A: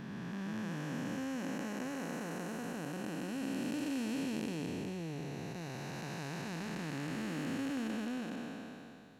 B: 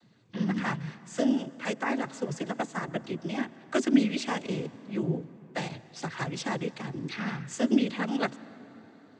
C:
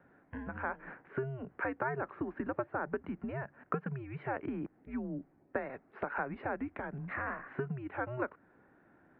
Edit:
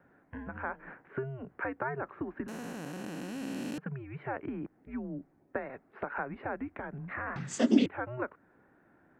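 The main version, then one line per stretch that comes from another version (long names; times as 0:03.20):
C
0:02.48–0:03.78: punch in from A
0:07.36–0:07.86: punch in from B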